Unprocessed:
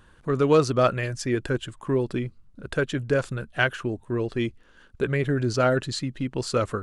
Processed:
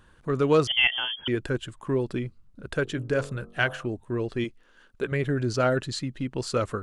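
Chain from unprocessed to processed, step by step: 0.67–1.28 s: frequency inversion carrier 3.3 kHz; 2.83–3.87 s: de-hum 47.03 Hz, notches 28; 4.44–5.12 s: peaking EQ 66 Hz -12 dB 2.7 oct; trim -2 dB

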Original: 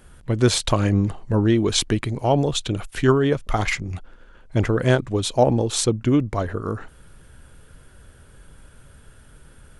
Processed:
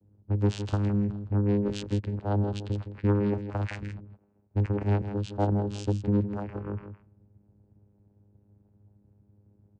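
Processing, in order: level-controlled noise filter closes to 340 Hz, open at -18.5 dBFS; vocoder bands 8, saw 102 Hz; saturation -10 dBFS, distortion -21 dB; on a send: delay 162 ms -10 dB; on the sum: trim -4.5 dB

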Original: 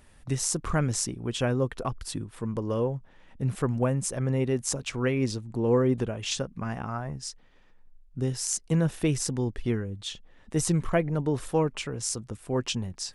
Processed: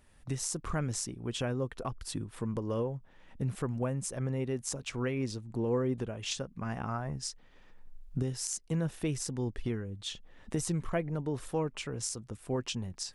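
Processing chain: recorder AGC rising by 12 dB/s; trim -7.5 dB

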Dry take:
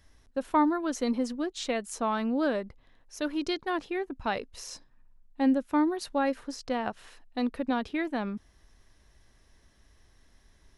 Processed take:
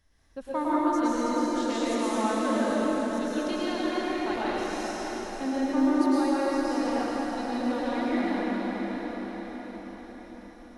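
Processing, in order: on a send: echo that smears into a reverb 614 ms, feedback 52%, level -8.5 dB; on the sum: plate-style reverb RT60 4.8 s, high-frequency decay 0.8×, pre-delay 95 ms, DRR -9.5 dB; trim -8 dB

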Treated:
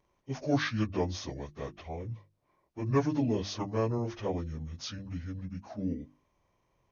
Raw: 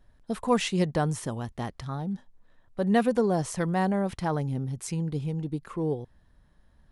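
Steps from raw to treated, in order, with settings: frequency-domain pitch shifter -9 st; high-pass 200 Hz 6 dB/octave; hum notches 50/100/150/200/250/300/350 Hz

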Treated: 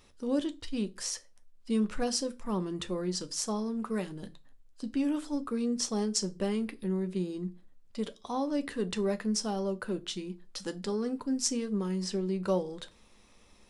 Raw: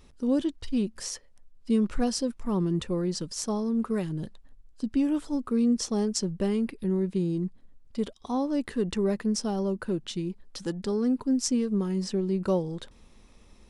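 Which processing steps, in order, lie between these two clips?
bass shelf 340 Hz -10 dB; on a send: reverberation RT60 0.30 s, pre-delay 9 ms, DRR 10 dB

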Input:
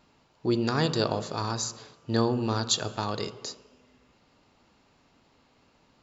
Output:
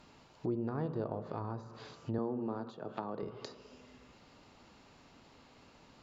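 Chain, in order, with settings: 2.18–3.23 s: high-pass 150 Hz 24 dB/octave; compression 2:1, threshold -46 dBFS, peak gain reduction 14 dB; low-pass that closes with the level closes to 910 Hz, closed at -37.5 dBFS; trim +3.5 dB

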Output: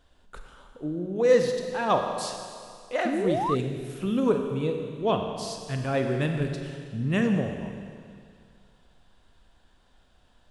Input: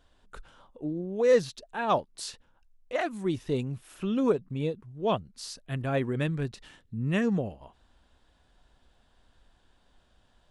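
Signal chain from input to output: Schroeder reverb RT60 2.2 s, combs from 31 ms, DRR 4 dB; painted sound rise, 3.05–3.55 s, 220–1300 Hz -29 dBFS; trim +1.5 dB

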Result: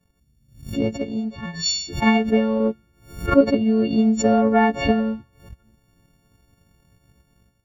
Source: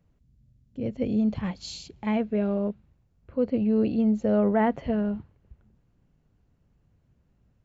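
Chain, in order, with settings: partials quantised in pitch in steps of 4 st; transient shaper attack +8 dB, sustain -4 dB; level rider gain up to 10 dB; 0.93–1.66 s: feedback comb 84 Hz, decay 1.3 s, harmonics all, mix 60%; 2.60–3.41 s: small resonant body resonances 350/1400/2100 Hz, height 8 dB, ringing for 20 ms; swell ahead of each attack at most 120 dB/s; trim -3 dB

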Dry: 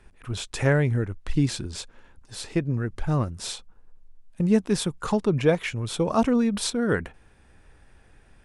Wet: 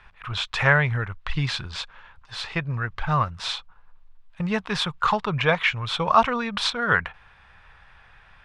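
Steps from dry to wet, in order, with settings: FFT filter 160 Hz 0 dB, 290 Hz -13 dB, 1.1 kHz +14 dB, 1.6 kHz +11 dB, 3.6 kHz +10 dB, 9.4 kHz -13 dB; trim -1 dB

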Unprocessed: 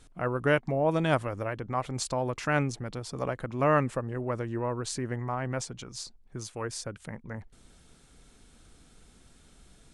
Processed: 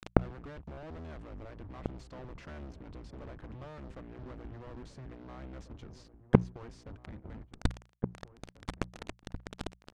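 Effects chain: octave divider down 1 oct, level +4 dB; fuzz box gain 39 dB, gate -45 dBFS; treble shelf 5.6 kHz +4.5 dB; compression 8:1, threshold -17 dBFS, peak gain reduction 6 dB; inverted gate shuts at -16 dBFS, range -39 dB; tape spacing loss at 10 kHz 27 dB; hum notches 60/120/180 Hz; echo from a far wall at 290 m, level -12 dB; trim +14 dB

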